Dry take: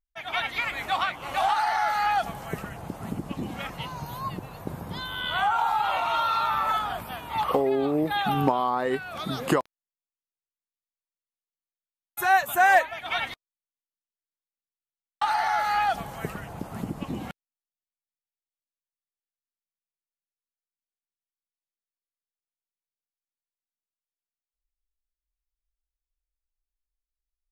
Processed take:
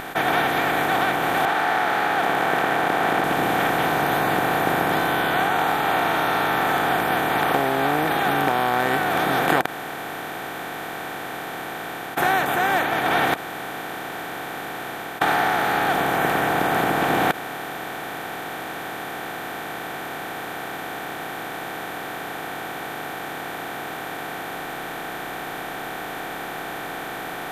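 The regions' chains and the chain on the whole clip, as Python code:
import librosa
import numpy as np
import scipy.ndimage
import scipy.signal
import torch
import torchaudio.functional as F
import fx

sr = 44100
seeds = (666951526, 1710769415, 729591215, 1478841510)

y = fx.chain(x, sr, fx.law_mismatch(coded='A'),
    fx.bandpass_edges(low_hz=640.0, high_hz=2400.0),
    fx.env_flatten(amount_pct=50), at=(1.45, 3.24))
y = fx.bin_compress(y, sr, power=0.2)
y = fx.rider(y, sr, range_db=3, speed_s=0.5)
y = F.gain(torch.from_numpy(y), -6.5).numpy()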